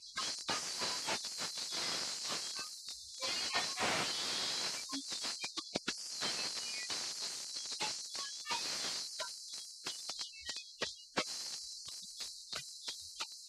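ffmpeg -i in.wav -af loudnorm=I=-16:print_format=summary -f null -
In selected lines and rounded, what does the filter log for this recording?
Input Integrated:    -38.8 LUFS
Input True Peak:     -17.4 dBTP
Input LRA:             5.7 LU
Input Threshold:     -48.8 LUFS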